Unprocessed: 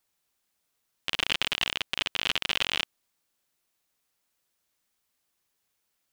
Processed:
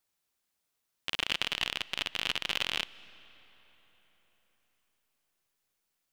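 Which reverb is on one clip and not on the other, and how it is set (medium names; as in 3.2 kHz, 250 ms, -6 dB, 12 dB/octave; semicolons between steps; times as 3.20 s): algorithmic reverb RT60 4.5 s, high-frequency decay 0.7×, pre-delay 115 ms, DRR 19.5 dB; trim -4 dB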